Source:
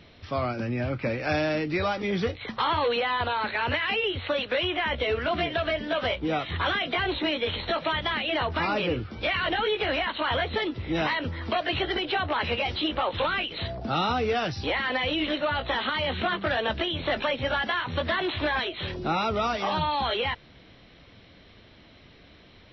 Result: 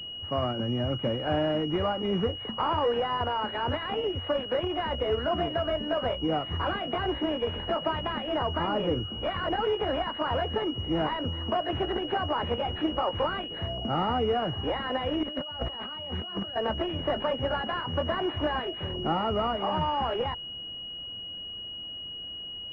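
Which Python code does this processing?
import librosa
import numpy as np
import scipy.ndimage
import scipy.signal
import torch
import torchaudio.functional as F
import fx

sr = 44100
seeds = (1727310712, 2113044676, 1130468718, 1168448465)

y = fx.over_compress(x, sr, threshold_db=-34.0, ratio=-0.5, at=(15.23, 16.56))
y = fx.pwm(y, sr, carrier_hz=2900.0)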